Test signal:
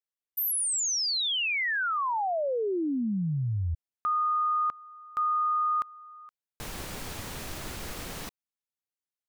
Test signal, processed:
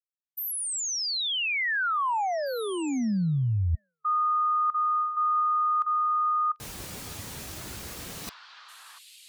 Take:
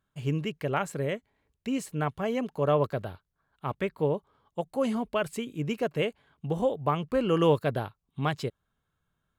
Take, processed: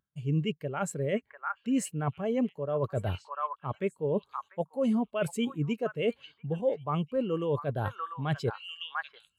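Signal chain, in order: HPF 49 Hz; high shelf 3300 Hz +8.5 dB; delay with a stepping band-pass 0.695 s, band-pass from 1300 Hz, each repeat 1.4 oct, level -7 dB; reverse; compressor 20:1, threshold -38 dBFS; reverse; spectral expander 1.5:1; gain +8.5 dB

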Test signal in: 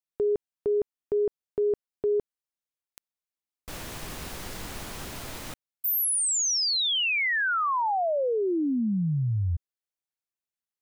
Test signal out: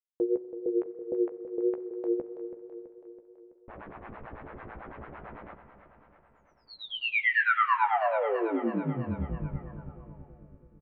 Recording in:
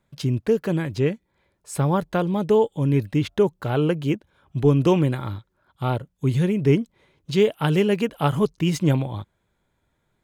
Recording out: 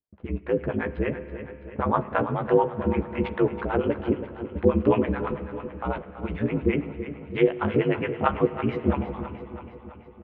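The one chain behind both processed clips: low-pass opened by the level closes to 720 Hz, open at -19 dBFS; LPF 2300 Hz 24 dB/oct; gate with hold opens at -52 dBFS, range -21 dB; low shelf 270 Hz -11.5 dB; harmonic tremolo 9 Hz, depth 100%, crossover 560 Hz; vibrato 3.7 Hz 28 cents; ring modulator 56 Hz; doubler 14 ms -8 dB; on a send: feedback echo 0.329 s, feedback 60%, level -12 dB; on the sum: spring tank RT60 3.5 s, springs 30/41 ms, chirp 45 ms, DRR 14 dB; gain +8 dB

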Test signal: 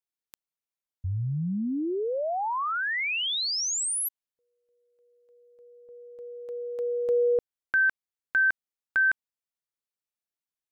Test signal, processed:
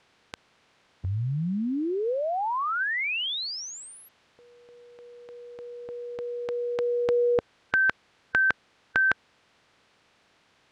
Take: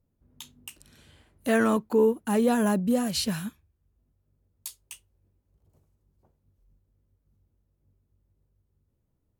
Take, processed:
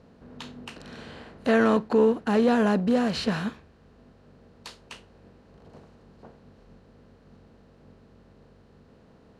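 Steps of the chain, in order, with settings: per-bin compression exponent 0.6; LPF 3700 Hz 12 dB/oct

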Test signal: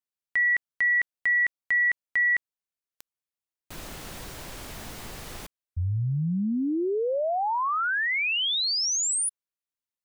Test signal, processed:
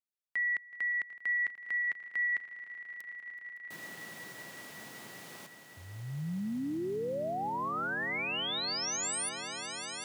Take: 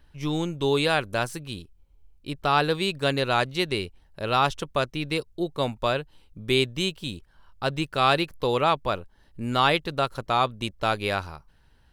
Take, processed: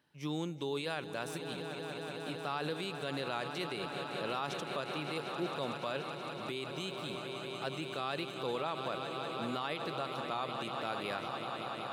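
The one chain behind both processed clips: on a send: swelling echo 0.187 s, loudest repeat 5, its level -15 dB; on the sum: limiter -18 dBFS; HPF 140 Hz 24 dB/oct; gain -8.5 dB

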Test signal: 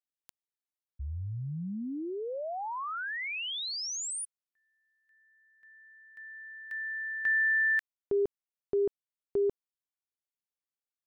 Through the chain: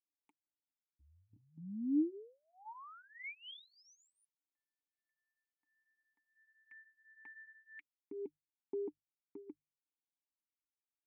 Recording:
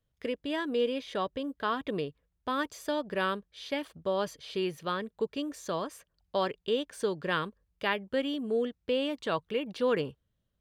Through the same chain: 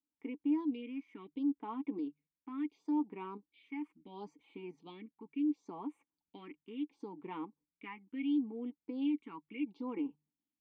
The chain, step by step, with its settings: low shelf 170 Hz -7 dB; notches 50/100/150 Hz; in parallel at +2 dB: level quantiser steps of 20 dB; on the sum: phaser stages 4, 0.72 Hz, lowest notch 610–4900 Hz; vowel filter u; flange 2 Hz, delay 3.5 ms, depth 1.2 ms, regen -27%; gain +4.5 dB

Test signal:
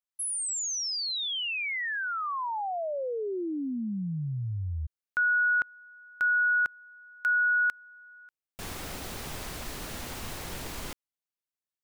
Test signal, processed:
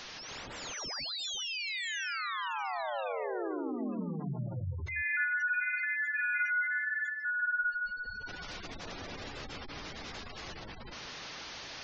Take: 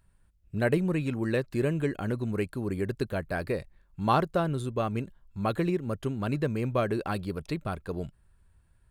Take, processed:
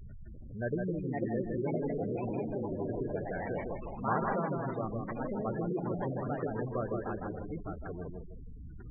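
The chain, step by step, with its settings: delta modulation 32 kbps, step -30 dBFS; notches 50/100/150/200 Hz; reverse; upward compressor, threshold -44 dBFS; reverse; echoes that change speed 0.614 s, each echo +3 st, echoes 3; on a send: tape echo 0.159 s, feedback 44%, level -3 dB, low-pass 4400 Hz; on the sum: spectral gate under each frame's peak -15 dB strong; gain -8.5 dB

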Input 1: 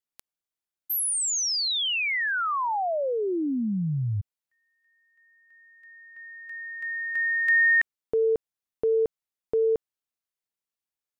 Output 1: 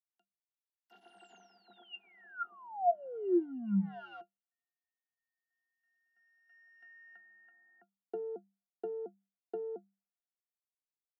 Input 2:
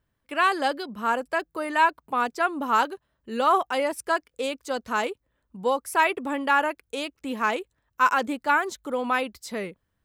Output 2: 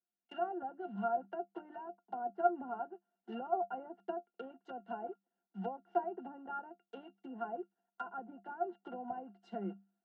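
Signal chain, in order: block floating point 3-bit; treble ducked by the level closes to 2500 Hz, closed at -21 dBFS; rippled Chebyshev high-pass 190 Hz, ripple 9 dB; compressor 2.5:1, threshold -38 dBFS; treble ducked by the level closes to 900 Hz, closed at -34.5 dBFS; octave resonator F, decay 0.1 s; three-band expander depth 40%; gain +11.5 dB

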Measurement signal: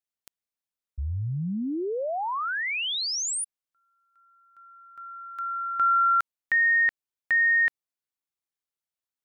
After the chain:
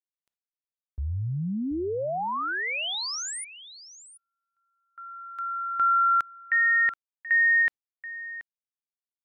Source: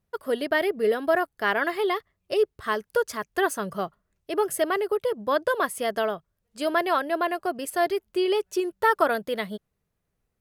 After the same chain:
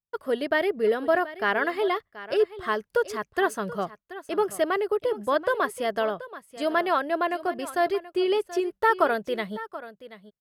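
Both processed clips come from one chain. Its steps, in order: gate with hold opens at -43 dBFS, closes at -53 dBFS, hold 20 ms, range -24 dB; high shelf 6700 Hz -9 dB; on a send: echo 0.73 s -15.5 dB

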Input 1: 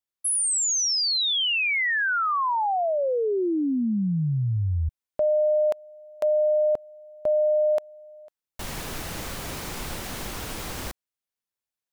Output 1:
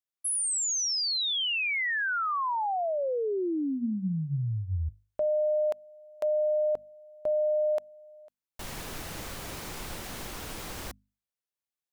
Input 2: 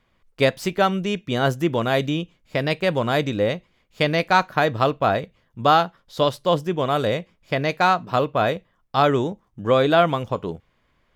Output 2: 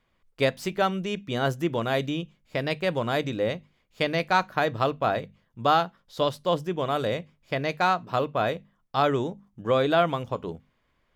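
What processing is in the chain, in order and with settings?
notches 50/100/150/200/250 Hz; gain -5 dB

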